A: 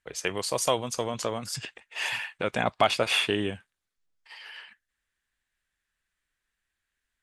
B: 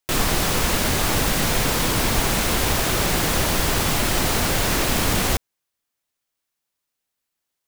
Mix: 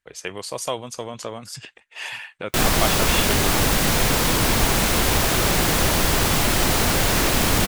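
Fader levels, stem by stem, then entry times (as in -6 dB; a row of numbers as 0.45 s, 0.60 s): -1.5 dB, +1.5 dB; 0.00 s, 2.45 s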